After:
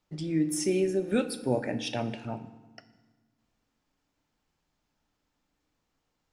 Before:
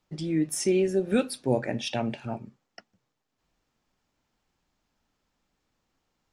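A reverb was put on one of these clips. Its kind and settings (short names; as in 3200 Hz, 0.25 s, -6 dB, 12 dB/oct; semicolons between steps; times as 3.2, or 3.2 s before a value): FDN reverb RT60 1.3 s, low-frequency decay 1.55×, high-frequency decay 0.75×, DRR 11 dB; gain -2.5 dB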